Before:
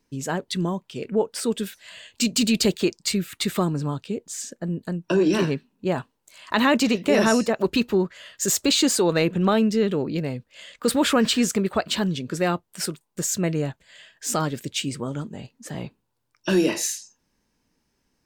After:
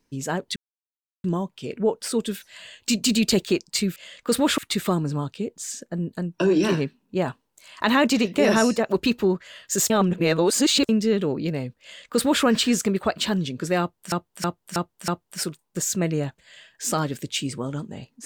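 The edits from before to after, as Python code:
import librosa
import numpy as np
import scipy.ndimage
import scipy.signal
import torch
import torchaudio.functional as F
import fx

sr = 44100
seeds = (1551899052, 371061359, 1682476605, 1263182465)

y = fx.edit(x, sr, fx.insert_silence(at_s=0.56, length_s=0.68),
    fx.reverse_span(start_s=8.6, length_s=0.99),
    fx.duplicate(start_s=10.52, length_s=0.62, to_s=3.28),
    fx.repeat(start_s=12.5, length_s=0.32, count=5), tone=tone)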